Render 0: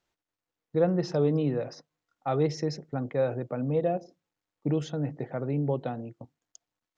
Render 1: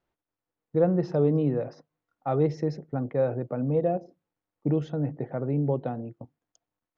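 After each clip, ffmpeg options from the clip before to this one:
-af "lowpass=f=1100:p=1,volume=1.33"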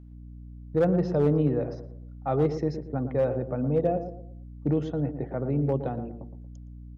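-filter_complex "[0:a]aeval=exprs='val(0)+0.00562*(sin(2*PI*60*n/s)+sin(2*PI*2*60*n/s)/2+sin(2*PI*3*60*n/s)/3+sin(2*PI*4*60*n/s)/4+sin(2*PI*5*60*n/s)/5)':c=same,volume=6.31,asoftclip=hard,volume=0.158,asplit=2[s0][s1];[s1]adelay=116,lowpass=f=910:p=1,volume=0.376,asplit=2[s2][s3];[s3]adelay=116,lowpass=f=910:p=1,volume=0.4,asplit=2[s4][s5];[s5]adelay=116,lowpass=f=910:p=1,volume=0.4,asplit=2[s6][s7];[s7]adelay=116,lowpass=f=910:p=1,volume=0.4[s8];[s0][s2][s4][s6][s8]amix=inputs=5:normalize=0"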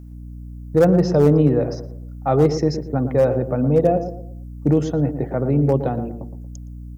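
-af "aexciter=amount=3.6:drive=5.9:freq=5000,volume=2.66"

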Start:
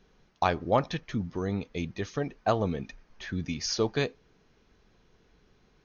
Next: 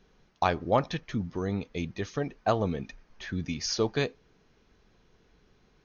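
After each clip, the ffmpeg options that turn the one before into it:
-af anull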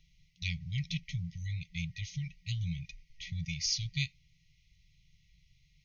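-af "afftfilt=real='re*(1-between(b*sr/4096,180,1900))':imag='im*(1-between(b*sr/4096,180,1900))':win_size=4096:overlap=0.75"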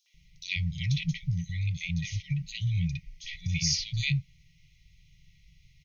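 -filter_complex "[0:a]acrossover=split=650|4400[s0][s1][s2];[s1]adelay=60[s3];[s0]adelay=140[s4];[s4][s3][s2]amix=inputs=3:normalize=0,volume=2.24"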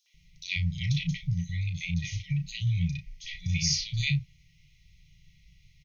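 -filter_complex "[0:a]asplit=2[s0][s1];[s1]adelay=34,volume=0.355[s2];[s0][s2]amix=inputs=2:normalize=0"

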